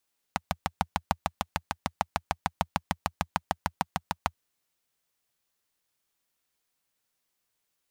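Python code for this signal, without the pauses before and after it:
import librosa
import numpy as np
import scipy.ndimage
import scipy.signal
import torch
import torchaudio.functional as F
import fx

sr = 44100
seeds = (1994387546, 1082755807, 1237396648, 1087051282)

y = fx.engine_single(sr, seeds[0], length_s=3.98, rpm=800, resonances_hz=(84.0, 170.0, 800.0))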